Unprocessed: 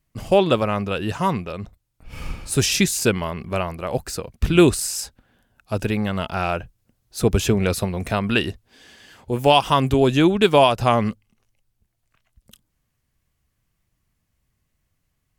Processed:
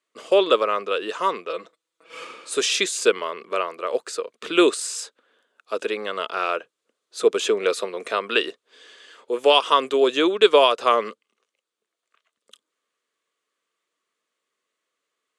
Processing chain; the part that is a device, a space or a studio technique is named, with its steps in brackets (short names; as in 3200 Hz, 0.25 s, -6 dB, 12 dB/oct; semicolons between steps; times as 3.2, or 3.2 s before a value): phone speaker on a table (speaker cabinet 360–8800 Hz, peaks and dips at 460 Hz +7 dB, 790 Hz -9 dB, 1200 Hz +7 dB, 3500 Hz +5 dB, 5400 Hz -4 dB); 1.49–2.25 comb 6.1 ms, depth 94%; gain -1 dB